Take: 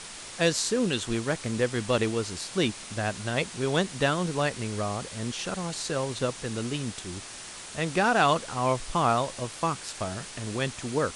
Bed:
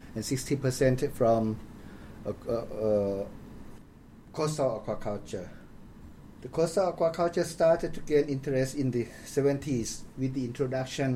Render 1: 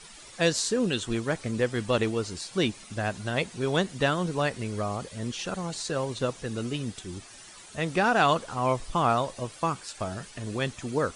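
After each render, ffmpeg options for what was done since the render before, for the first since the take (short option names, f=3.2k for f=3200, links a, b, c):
-af "afftdn=nr=11:nf=-42"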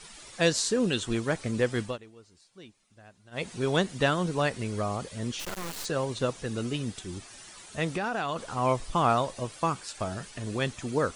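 -filter_complex "[0:a]asplit=3[a][b][c];[a]afade=t=out:st=5.39:d=0.02[d];[b]acrusher=bits=3:dc=4:mix=0:aa=0.000001,afade=t=in:st=5.39:d=0.02,afade=t=out:st=5.84:d=0.02[e];[c]afade=t=in:st=5.84:d=0.02[f];[d][e][f]amix=inputs=3:normalize=0,asettb=1/sr,asplit=3[g][h][i];[g]atrim=end=7.904[j];[h]atrim=start=7.9:end=8.46,asetpts=PTS-STARTPTS,afade=t=in:d=0.004:c=qsin,afade=t=out:st=0.556:d=0.004:c=qsin,acompressor=threshold=-26dB:ratio=10:attack=3.2:release=140:knee=1:detection=peak[k];[i]atrim=start=8.456[l];[j][k]acrossfade=d=0.004:c1=hsin:c2=qsin[m];[m][l]acrossfade=d=0.004:c1=qsin:c2=hsin,asplit=3[n][o][p];[n]atrim=end=1.98,asetpts=PTS-STARTPTS,afade=t=out:st=1.8:d=0.18:silence=0.0668344[q];[o]atrim=start=1.98:end=3.31,asetpts=PTS-STARTPTS,volume=-23.5dB[r];[p]atrim=start=3.31,asetpts=PTS-STARTPTS,afade=t=in:d=0.18:silence=0.0668344[s];[q][r][s]concat=n=3:v=0:a=1"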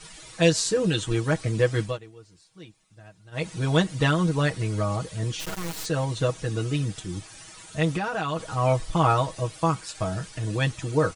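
-af "equalizer=f=84:t=o:w=0.86:g=14.5,aecho=1:1:6.3:0.87"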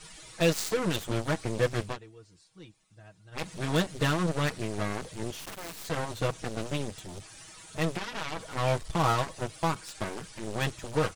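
-af "asoftclip=type=tanh:threshold=-19dB,aeval=exprs='0.112*(cos(1*acos(clip(val(0)/0.112,-1,1)))-cos(1*PI/2))+0.0447*(cos(3*acos(clip(val(0)/0.112,-1,1)))-cos(3*PI/2))+0.00631*(cos(4*acos(clip(val(0)/0.112,-1,1)))-cos(4*PI/2))+0.00794*(cos(7*acos(clip(val(0)/0.112,-1,1)))-cos(7*PI/2))+0.000891*(cos(8*acos(clip(val(0)/0.112,-1,1)))-cos(8*PI/2))':c=same"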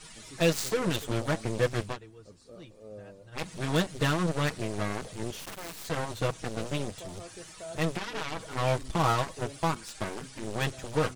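-filter_complex "[1:a]volume=-19.5dB[a];[0:a][a]amix=inputs=2:normalize=0"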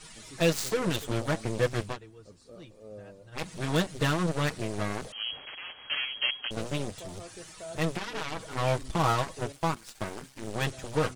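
-filter_complex "[0:a]asettb=1/sr,asplit=3[a][b][c];[a]atrim=end=5.124[d];[b]atrim=start=5.12:end=6.51,asetpts=PTS-STARTPTS,afade=t=in:d=0.004:c=qsin,afade=t=out:st=1.386:d=0.004:c=qsin,lowpass=f=2.8k:t=q:w=0.5098,lowpass=f=2.8k:t=q:w=0.6013,lowpass=f=2.8k:t=q:w=0.9,lowpass=f=2.8k:t=q:w=2.563,afreqshift=-3300[e];[c]atrim=start=6.506[f];[d][e]acrossfade=d=0.004:c1=hsin:c2=qsin[g];[g][f]acrossfade=d=0.004:c1=qsin:c2=hsin,asettb=1/sr,asplit=3[h][i][j];[h]atrim=end=9.524[k];[i]atrim=start=9.52:end=10.54,asetpts=PTS-STARTPTS,afade=t=in:d=0.004:c=qsin,afade=t=out:st=1.016:d=0.004:c=qsin,aeval=exprs='sgn(val(0))*max(abs(val(0))-0.00398,0)':c=same[l];[j]atrim=start=10.536[m];[k][l]acrossfade=d=0.004:c1=hsin:c2=qsin[n];[n][m]acrossfade=d=0.004:c1=qsin:c2=hsin"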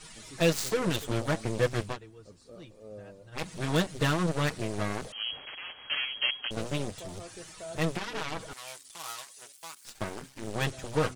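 -filter_complex "[0:a]asettb=1/sr,asplit=3[a][b][c];[a]atrim=end=8.534[d];[b]atrim=start=8.53:end=9.85,asetpts=PTS-STARTPTS,afade=t=in:d=0.004:c=qsin,afade=t=out:st=1.316:d=0.004:c=qsin,aderivative[e];[c]atrim=start=9.846[f];[d][e]acrossfade=d=0.004:c1=hsin:c2=qsin[g];[g][f]acrossfade=d=0.004:c1=qsin:c2=hsin"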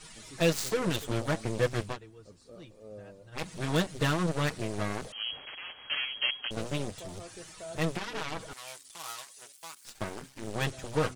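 -af "volume=-1dB"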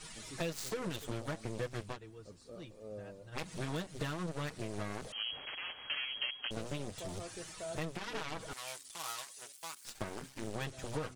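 -af "acompressor=threshold=-35dB:ratio=6"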